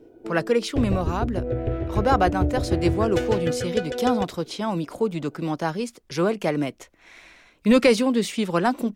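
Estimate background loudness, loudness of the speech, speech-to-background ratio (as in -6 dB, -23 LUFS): -27.5 LUFS, -24.5 LUFS, 3.0 dB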